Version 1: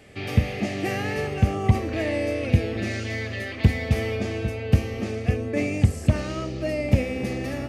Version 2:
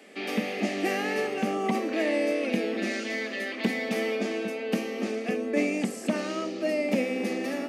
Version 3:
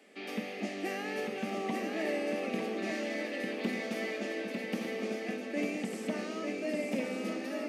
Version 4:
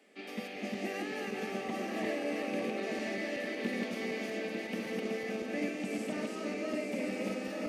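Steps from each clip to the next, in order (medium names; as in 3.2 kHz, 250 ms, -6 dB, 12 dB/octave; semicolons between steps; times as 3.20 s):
steep high-pass 200 Hz 48 dB/octave
shuffle delay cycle 1199 ms, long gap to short 3:1, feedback 43%, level -4.5 dB; trim -8.5 dB
backward echo that repeats 187 ms, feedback 45%, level -0.5 dB; trim -4 dB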